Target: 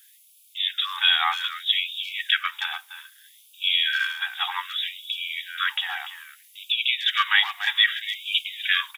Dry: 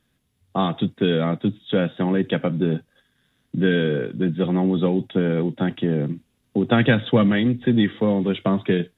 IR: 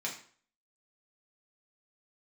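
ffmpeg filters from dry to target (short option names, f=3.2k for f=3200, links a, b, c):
-filter_complex "[0:a]acrossover=split=520[a][b];[b]alimiter=limit=-16.5dB:level=0:latency=1:release=266[c];[a][c]amix=inputs=2:normalize=0,highpass=280,aemphasis=mode=production:type=riaa,asplit=2[d][e];[e]adelay=290,highpass=300,lowpass=3.4k,asoftclip=type=hard:threshold=-19.5dB,volume=-10dB[f];[d][f]amix=inputs=2:normalize=0,afftfilt=real='re*gte(b*sr/1024,690*pow(2300/690,0.5+0.5*sin(2*PI*0.63*pts/sr)))':imag='im*gte(b*sr/1024,690*pow(2300/690,0.5+0.5*sin(2*PI*0.63*pts/sr)))':win_size=1024:overlap=0.75,volume=8.5dB"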